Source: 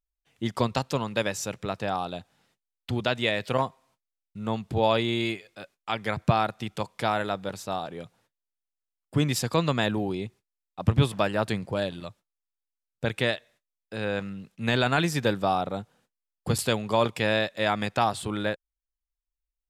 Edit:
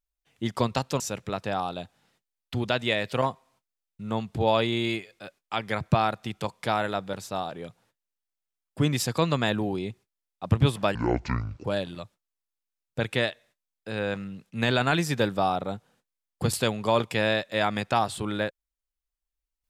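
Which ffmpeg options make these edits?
-filter_complex "[0:a]asplit=4[a][b][c][d];[a]atrim=end=1.002[e];[b]atrim=start=1.358:end=11.314[f];[c]atrim=start=11.31:end=11.7,asetpts=PTS-STARTPTS,asetrate=24696,aresample=44100,atrim=end_sample=30712,asetpts=PTS-STARTPTS[g];[d]atrim=start=11.696[h];[e][f]acrossfade=d=0.004:c1=hsin:c2=hsin[i];[i][g]acrossfade=d=0.004:c1=hsin:c2=hsin[j];[j][h]acrossfade=d=0.004:c1=hsin:c2=hsin"

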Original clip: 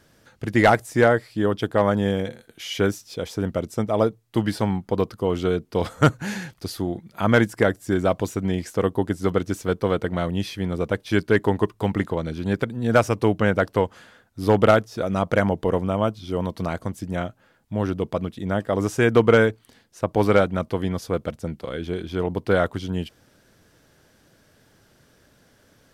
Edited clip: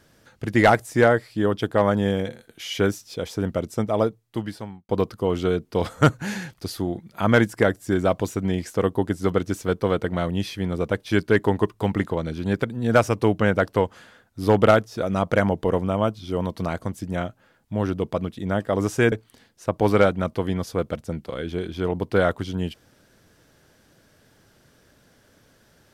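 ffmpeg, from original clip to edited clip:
-filter_complex "[0:a]asplit=3[a][b][c];[a]atrim=end=4.89,asetpts=PTS-STARTPTS,afade=t=out:st=3.88:d=1.01[d];[b]atrim=start=4.89:end=19.122,asetpts=PTS-STARTPTS,afade=t=in:d=0.004:c=hsin[e];[c]atrim=start=19.468[f];[d][e]concat=n=2:v=0:a=1[g];[g][f]acrossfade=d=0.004:c1=hsin:c2=hsin"

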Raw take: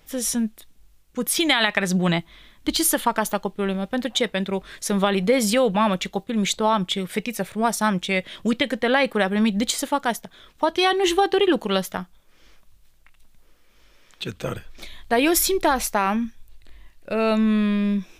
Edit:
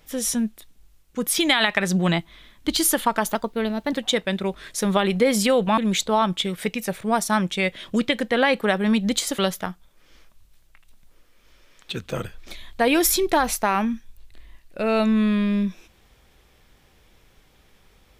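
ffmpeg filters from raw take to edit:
-filter_complex "[0:a]asplit=5[a][b][c][d][e];[a]atrim=end=3.354[f];[b]atrim=start=3.35:end=4,asetpts=PTS-STARTPTS,asetrate=49833,aresample=44100,atrim=end_sample=25367,asetpts=PTS-STARTPTS[g];[c]atrim=start=3.996:end=5.852[h];[d]atrim=start=6.288:end=9.902[i];[e]atrim=start=11.698[j];[f][g]acrossfade=d=0.004:c1=hsin:c2=hsin[k];[k][h]acrossfade=d=0.004:c1=hsin:c2=hsin[l];[l][i]acrossfade=d=0.004:c1=hsin:c2=hsin[m];[m][j]acrossfade=d=0.004:c1=hsin:c2=hsin"

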